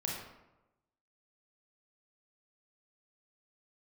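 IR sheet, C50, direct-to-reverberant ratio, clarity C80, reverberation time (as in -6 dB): 1.0 dB, -2.5 dB, 4.5 dB, 1.0 s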